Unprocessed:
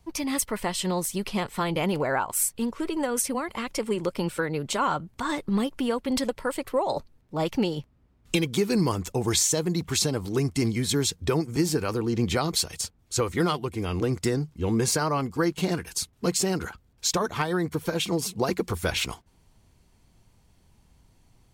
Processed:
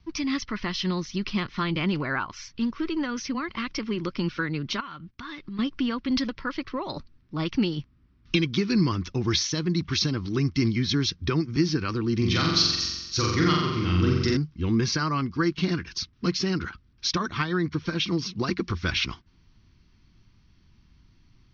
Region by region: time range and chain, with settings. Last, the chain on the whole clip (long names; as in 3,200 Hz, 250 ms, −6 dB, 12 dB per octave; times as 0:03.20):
0:04.80–0:05.59: noise gate −50 dBFS, range −15 dB + dynamic equaliser 2,700 Hz, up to +7 dB, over −44 dBFS, Q 0.89 + downward compressor 4 to 1, threshold −38 dBFS
0:12.17–0:14.37: Chebyshev low-pass filter 8,700 Hz + high-shelf EQ 7,900 Hz +11 dB + flutter between parallel walls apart 7.6 metres, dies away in 1.1 s
whole clip: Butterworth low-pass 5,900 Hz 96 dB per octave; flat-topped bell 620 Hz −12.5 dB 1.3 octaves; level +2 dB